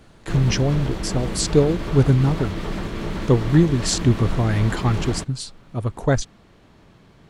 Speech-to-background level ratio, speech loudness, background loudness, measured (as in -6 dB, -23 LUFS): 8.0 dB, -21.0 LUFS, -29.0 LUFS